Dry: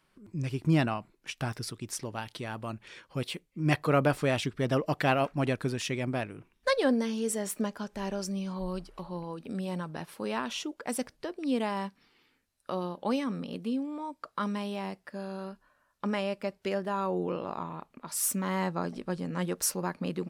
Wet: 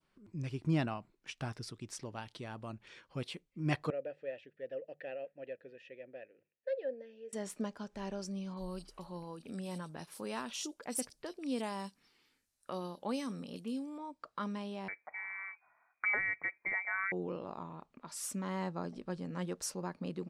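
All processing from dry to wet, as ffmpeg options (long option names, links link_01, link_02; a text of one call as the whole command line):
ffmpeg -i in.wav -filter_complex "[0:a]asettb=1/sr,asplit=3[link_01][link_02][link_03];[link_01]atrim=end=3.904[link_04];[link_02]atrim=start=3.9:end=7.33,asetpts=PTS-STARTPTS,afade=type=in:duration=0.004:curve=qsin,afade=type=out:start_time=3.426:duration=0.004:curve=qsin,asplit=3[link_05][link_06][link_07];[link_05]bandpass=frequency=530:width_type=q:width=8,volume=0dB[link_08];[link_06]bandpass=frequency=1840:width_type=q:width=8,volume=-6dB[link_09];[link_07]bandpass=frequency=2480:width_type=q:width=8,volume=-9dB[link_10];[link_08][link_09][link_10]amix=inputs=3:normalize=0,highshelf=frequency=4000:gain=-8.5,bandreject=frequency=50:width_type=h:width=6,bandreject=frequency=100:width_type=h:width=6,bandreject=frequency=150:width_type=h:width=6,bandreject=frequency=200:width_type=h:width=6[link_11];[link_03]atrim=start=7.326[link_12];[link_04][link_11]acrossfade=duration=0.004:curve1=hsin:curve2=qsin[link_13];[link_13][link_12]acrossfade=duration=0.004:curve1=qsin:curve2=hsin,asettb=1/sr,asplit=3[link_14][link_15][link_16];[link_14]atrim=end=8.544[link_17];[link_15]atrim=start=8.54:end=13.98,asetpts=PTS-STARTPTS,afade=type=in:duration=0.004:curve=qsin,afade=type=out:start_time=5.436:duration=0.004:curve=qsin,aemphasis=mode=production:type=75fm,acrossover=split=3400[link_18][link_19];[link_19]adelay=30[link_20];[link_18][link_20]amix=inputs=2:normalize=0,atrim=end_sample=239904[link_21];[link_16]atrim=start=13.976[link_22];[link_17][link_21]acrossfade=duration=0.004:curve1=hsin:curve2=qsin[link_23];[link_23][link_22]acrossfade=duration=0.004:curve1=qsin:curve2=hsin,asettb=1/sr,asplit=3[link_24][link_25][link_26];[link_24]atrim=end=14.884[link_27];[link_25]atrim=start=14.88:end=17.12,asetpts=PTS-STARTPTS,afade=type=in:duration=0.004:curve=qsin,afade=type=out:start_time=2.236:duration=0.004:curve=qsin,acontrast=36,lowpass=frequency=2100:width_type=q:width=0.5098,lowpass=frequency=2100:width_type=q:width=0.6013,lowpass=frequency=2100:width_type=q:width=0.9,lowpass=frequency=2100:width_type=q:width=2.563,afreqshift=-2500[link_28];[link_26]atrim=start=17.116[link_29];[link_27][link_28]acrossfade=duration=0.004:curve1=hsin:curve2=qsin[link_30];[link_30][link_29]acrossfade=duration=0.004:curve1=qsin:curve2=hsin,adynamicequalizer=threshold=0.00447:dfrequency=1900:dqfactor=0.74:tfrequency=1900:tqfactor=0.74:attack=5:release=100:ratio=0.375:range=2.5:mode=cutabove:tftype=bell,lowpass=7900,volume=-6.5dB" out.wav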